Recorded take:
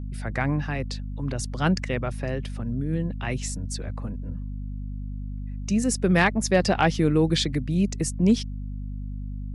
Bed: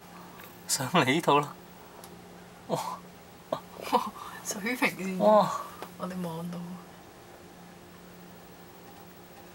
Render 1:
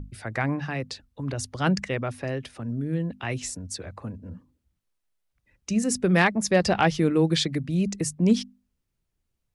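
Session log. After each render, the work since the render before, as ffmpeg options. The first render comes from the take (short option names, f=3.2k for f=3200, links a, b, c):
-af "bandreject=f=50:t=h:w=6,bandreject=f=100:t=h:w=6,bandreject=f=150:t=h:w=6,bandreject=f=200:t=h:w=6,bandreject=f=250:t=h:w=6"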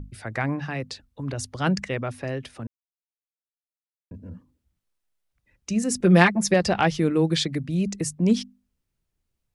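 -filter_complex "[0:a]asettb=1/sr,asplit=3[a][b][c];[a]atrim=end=6.004[d];[b]atrim=start=6:end=6.54,asetpts=PTS-STARTPTS,afade=t=in:d=0.004:c=qsin,afade=t=out:st=0.536:d=0.004:c=qsin,aecho=1:1:5.7:0.92,atrim=end_sample=23814[e];[c]atrim=start=6.536[f];[d][e]acrossfade=d=0.004:c1=hsin:c2=qsin[g];[g][f]acrossfade=d=0.004:c1=qsin:c2=hsin,asplit=3[h][i][j];[h]atrim=end=2.67,asetpts=PTS-STARTPTS,afade=t=out:st=2.666:d=0.004:c=hsin[k];[i]atrim=start=2.67:end=4.11,asetpts=PTS-STARTPTS,volume=0[l];[j]atrim=start=4.11,asetpts=PTS-STARTPTS,afade=t=in:d=0.004:c=hsin[m];[k][l][m]concat=n=3:v=0:a=1"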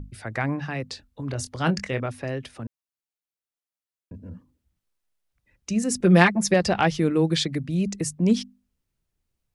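-filter_complex "[0:a]asettb=1/sr,asplit=3[a][b][c];[a]atrim=end=0.884[d];[b]atrim=start=0.88:end=2.06,asetpts=PTS-STARTPTS,afade=t=in:d=0.004:c=qsin,afade=t=out:st=1.176:d=0.004:c=qsin,asplit=2[e][f];[f]adelay=24,volume=-10dB[g];[e][g]amix=inputs=2:normalize=0,atrim=end_sample=52038[h];[c]atrim=start=2.056[i];[d][h]acrossfade=d=0.004:c1=hsin:c2=qsin[j];[j][i]acrossfade=d=0.004:c1=qsin:c2=hsin"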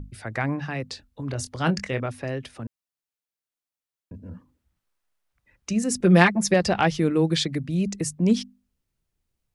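-filter_complex "[0:a]asettb=1/sr,asplit=3[a][b][c];[a]atrim=end=4.294[d];[b]atrim=start=4.29:end=5.73,asetpts=PTS-STARTPTS,afade=t=in:d=0.004:c=qsin,afade=t=out:st=1.436:d=0.004:c=qsin,equalizer=f=1.2k:t=o:w=2.1:g=6[e];[c]atrim=start=5.726[f];[d][e]acrossfade=d=0.004:c1=hsin:c2=qsin[g];[g][f]acrossfade=d=0.004:c1=qsin:c2=hsin"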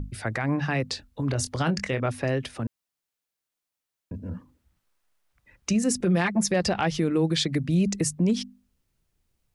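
-filter_complex "[0:a]asplit=2[a][b];[b]acompressor=threshold=-27dB:ratio=6,volume=-2.5dB[c];[a][c]amix=inputs=2:normalize=0,alimiter=limit=-15dB:level=0:latency=1:release=127"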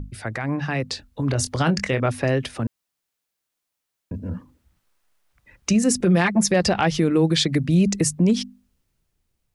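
-af "dynaudnorm=f=230:g=9:m=5dB"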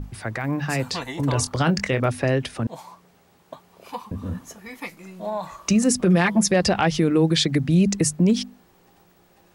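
-filter_complex "[1:a]volume=-8dB[a];[0:a][a]amix=inputs=2:normalize=0"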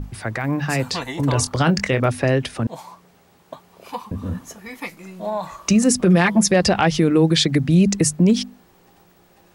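-af "volume=3dB"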